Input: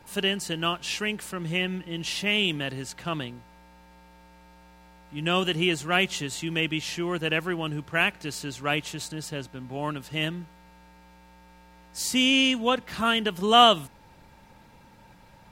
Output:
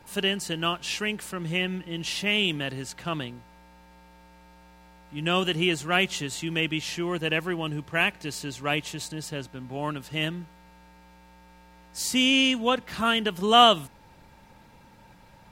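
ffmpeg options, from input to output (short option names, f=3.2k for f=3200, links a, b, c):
-filter_complex "[0:a]asettb=1/sr,asplit=3[a][b][c];[a]atrim=end=7.094[d];[b]atrim=start=7.09:end=9.3,asetpts=PTS-STARTPTS,afade=t=in:d=0.004:c=qsin,afade=t=out:st=2.206:d=0.004:c=qsin,bandreject=f=1.4k:w=10[e];[c]atrim=start=9.296[f];[d][e]acrossfade=d=0.004:c1=hsin:c2=qsin[g];[g][f]acrossfade=d=0.004:c1=qsin:c2=hsin"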